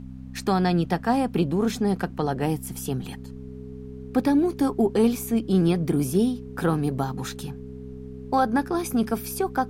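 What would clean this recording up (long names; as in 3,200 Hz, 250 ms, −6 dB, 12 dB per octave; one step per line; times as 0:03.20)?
hum removal 64.5 Hz, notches 4
notch filter 420 Hz, Q 30
downward expander −30 dBFS, range −21 dB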